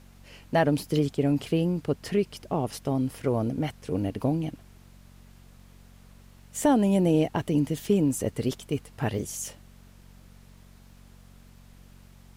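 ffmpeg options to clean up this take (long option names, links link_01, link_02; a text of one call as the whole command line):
ffmpeg -i in.wav -af "adeclick=threshold=4,bandreject=frequency=46.3:width_type=h:width=4,bandreject=frequency=92.6:width_type=h:width=4,bandreject=frequency=138.9:width_type=h:width=4,bandreject=frequency=185.2:width_type=h:width=4,bandreject=frequency=231.5:width_type=h:width=4,agate=range=-21dB:threshold=-44dB" out.wav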